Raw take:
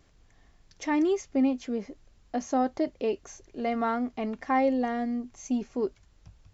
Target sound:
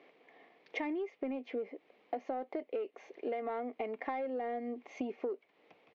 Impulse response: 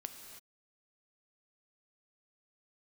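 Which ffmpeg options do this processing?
-filter_complex "[0:a]highpass=f=270:w=0.5412,highpass=f=270:w=1.3066,equalizer=f=470:t=q:w=4:g=9,equalizer=f=720:t=q:w=4:g=5,equalizer=f=1.5k:t=q:w=4:g=-7,equalizer=f=2.2k:t=q:w=4:g=8,lowpass=f=3.2k:w=0.5412,lowpass=f=3.2k:w=1.3066,asplit=2[a][b];[b]alimiter=limit=-19.5dB:level=0:latency=1:release=11,volume=-1dB[c];[a][c]amix=inputs=2:normalize=0,asoftclip=type=tanh:threshold=-10dB,atempo=1.1,acompressor=threshold=-33dB:ratio=12,volume=-1.5dB"

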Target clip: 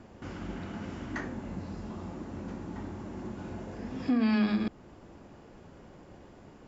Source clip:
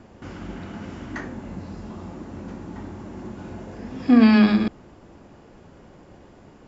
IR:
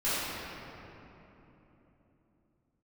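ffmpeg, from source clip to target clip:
-af "alimiter=limit=-15.5dB:level=0:latency=1:release=391,volume=-3.5dB"

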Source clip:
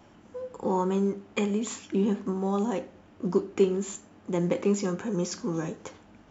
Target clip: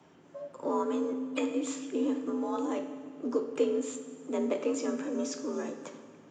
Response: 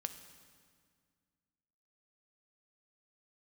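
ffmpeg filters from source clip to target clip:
-filter_complex "[0:a]asplit=2[a][b];[b]asetrate=52444,aresample=44100,atempo=0.840896,volume=-16dB[c];[a][c]amix=inputs=2:normalize=0,afreqshift=64[d];[1:a]atrim=start_sample=2205[e];[d][e]afir=irnorm=-1:irlink=0,volume=-2.5dB"

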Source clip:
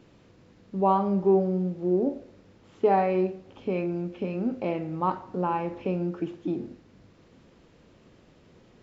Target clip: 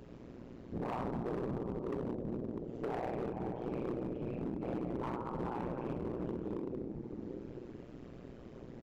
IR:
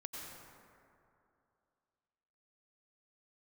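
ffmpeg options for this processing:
-filter_complex "[0:a]equalizer=f=270:w=1.1:g=8,asplit=2[a][b];[1:a]atrim=start_sample=2205,lowpass=2.7k,lowshelf=f=74:g=12[c];[b][c]afir=irnorm=-1:irlink=0,volume=2dB[d];[a][d]amix=inputs=2:normalize=0,acompressor=threshold=-37dB:ratio=2.5,afftfilt=real='hypot(re,im)*cos(2*PI*random(0))':imag='hypot(re,im)*sin(2*PI*random(1))':win_size=512:overlap=0.75,aecho=1:1:40|62:0.251|0.596,asoftclip=type=hard:threshold=-34.5dB,tremolo=f=120:d=0.824,volume=4dB"

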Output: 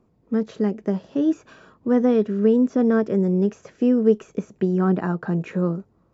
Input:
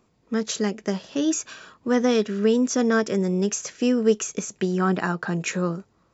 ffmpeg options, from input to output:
-filter_complex "[0:a]tiltshelf=f=1.3k:g=9,acrossover=split=3900[a][b];[b]acompressor=threshold=-54dB:ratio=4:attack=1:release=60[c];[a][c]amix=inputs=2:normalize=0,volume=-5dB"

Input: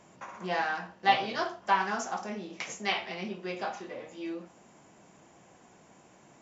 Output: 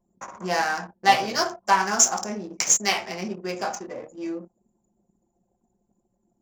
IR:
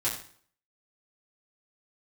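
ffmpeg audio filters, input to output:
-filter_complex "[0:a]anlmdn=0.0398,aexciter=amount=9.1:drive=8.7:freq=5.4k,asplit=2[a][b];[b]adynamicsmooth=sensitivity=7.5:basefreq=1.3k,volume=0.5dB[c];[a][c]amix=inputs=2:normalize=0"

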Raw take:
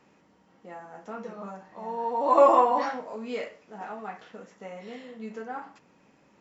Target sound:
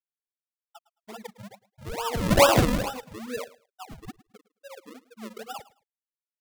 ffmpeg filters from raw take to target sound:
-af "afftfilt=real='re*gte(hypot(re,im),0.0794)':imag='im*gte(hypot(re,im),0.0794)':win_size=1024:overlap=0.75,acrusher=samples=40:mix=1:aa=0.000001:lfo=1:lforange=40:lforate=2.3,aecho=1:1:108|216:0.112|0.0236"

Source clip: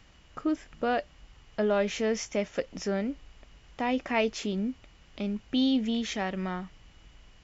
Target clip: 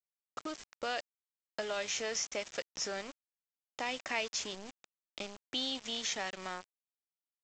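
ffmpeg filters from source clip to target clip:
-filter_complex "[0:a]highpass=68,bass=f=250:g=-13,treble=f=4k:g=12,acrossover=split=600|1900[a][b][c];[a]acompressor=threshold=-44dB:ratio=4[d];[b]acompressor=threshold=-38dB:ratio=4[e];[c]acompressor=threshold=-33dB:ratio=4[f];[d][e][f]amix=inputs=3:normalize=0,aresample=16000,aeval=exprs='val(0)*gte(abs(val(0)),0.00891)':c=same,aresample=44100,volume=-1dB"

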